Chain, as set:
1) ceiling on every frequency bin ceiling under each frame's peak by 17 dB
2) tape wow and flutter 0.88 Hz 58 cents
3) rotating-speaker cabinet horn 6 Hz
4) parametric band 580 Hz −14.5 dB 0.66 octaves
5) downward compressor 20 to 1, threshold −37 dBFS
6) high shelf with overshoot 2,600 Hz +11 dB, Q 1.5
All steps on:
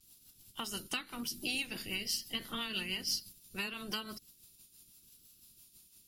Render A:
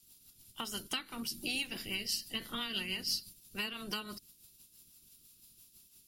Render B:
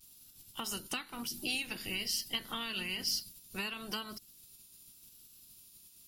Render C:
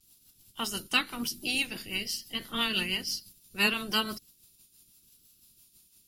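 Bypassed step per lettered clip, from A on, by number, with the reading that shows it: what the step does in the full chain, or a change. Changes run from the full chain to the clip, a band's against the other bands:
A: 2, change in momentary loudness spread −2 LU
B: 3, change in momentary loudness spread +10 LU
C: 5, average gain reduction 5.0 dB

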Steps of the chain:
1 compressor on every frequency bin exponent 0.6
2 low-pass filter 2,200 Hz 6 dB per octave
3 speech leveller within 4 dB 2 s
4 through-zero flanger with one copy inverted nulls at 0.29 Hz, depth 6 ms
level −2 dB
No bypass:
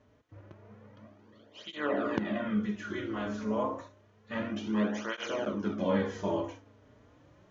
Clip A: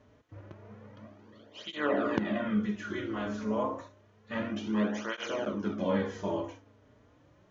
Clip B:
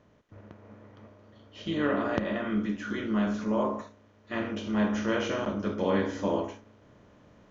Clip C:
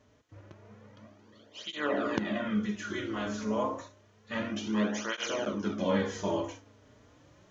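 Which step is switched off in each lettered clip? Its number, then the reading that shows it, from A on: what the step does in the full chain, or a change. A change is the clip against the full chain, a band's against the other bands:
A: 3, change in momentary loudness spread +9 LU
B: 4, change in momentary loudness spread −4 LU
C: 2, 4 kHz band +4.5 dB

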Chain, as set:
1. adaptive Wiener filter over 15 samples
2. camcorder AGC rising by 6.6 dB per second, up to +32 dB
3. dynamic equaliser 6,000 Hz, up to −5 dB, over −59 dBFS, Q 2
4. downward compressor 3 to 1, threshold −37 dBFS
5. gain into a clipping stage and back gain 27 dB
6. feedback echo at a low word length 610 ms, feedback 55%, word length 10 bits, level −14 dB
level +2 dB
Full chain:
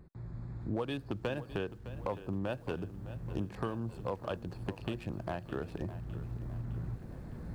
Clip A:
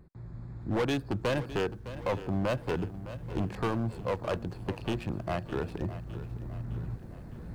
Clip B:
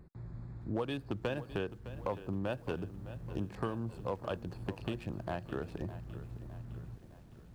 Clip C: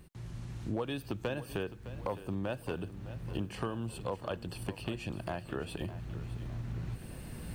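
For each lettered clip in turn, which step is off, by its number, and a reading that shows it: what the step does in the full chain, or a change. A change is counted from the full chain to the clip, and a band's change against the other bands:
4, average gain reduction 4.5 dB
2, change in momentary loudness spread +4 LU
1, 4 kHz band +3.5 dB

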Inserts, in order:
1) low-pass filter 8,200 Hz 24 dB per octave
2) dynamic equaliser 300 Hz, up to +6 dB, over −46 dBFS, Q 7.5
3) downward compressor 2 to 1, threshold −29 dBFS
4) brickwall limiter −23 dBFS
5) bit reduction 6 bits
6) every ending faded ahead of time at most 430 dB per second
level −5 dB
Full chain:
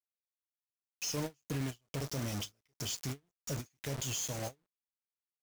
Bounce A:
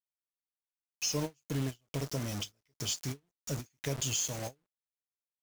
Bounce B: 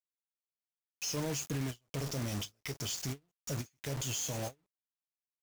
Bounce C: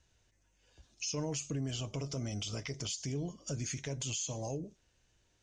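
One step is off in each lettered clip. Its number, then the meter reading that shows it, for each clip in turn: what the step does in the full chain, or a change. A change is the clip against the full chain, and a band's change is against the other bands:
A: 4, average gain reduction 1.5 dB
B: 3, average gain reduction 3.5 dB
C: 5, distortion level −8 dB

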